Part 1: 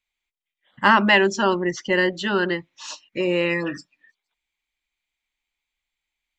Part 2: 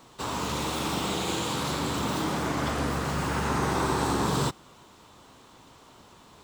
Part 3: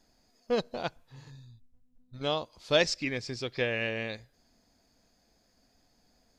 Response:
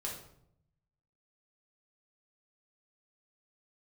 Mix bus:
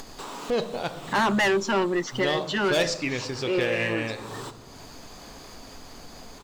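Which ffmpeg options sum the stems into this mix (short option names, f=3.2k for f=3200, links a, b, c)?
-filter_complex "[0:a]highpass=200,asoftclip=type=tanh:threshold=-19.5dB,highshelf=f=4.9k:g=-6,adelay=300,volume=1.5dB[a];[1:a]highpass=250,volume=-19dB,asplit=2[b][c];[c]volume=-7dB[d];[2:a]bandreject=f=5.2k:w=21,asoftclip=type=hard:threshold=-21.5dB,volume=0.5dB,asplit=3[e][f][g];[f]volume=-4.5dB[h];[g]apad=whole_len=294815[i];[a][i]sidechaincompress=threshold=-34dB:ratio=8:attack=39:release=160[j];[3:a]atrim=start_sample=2205[k];[d][h]amix=inputs=2:normalize=0[l];[l][k]afir=irnorm=-1:irlink=0[m];[j][b][e][m]amix=inputs=4:normalize=0,acompressor=mode=upward:threshold=-26dB:ratio=2.5"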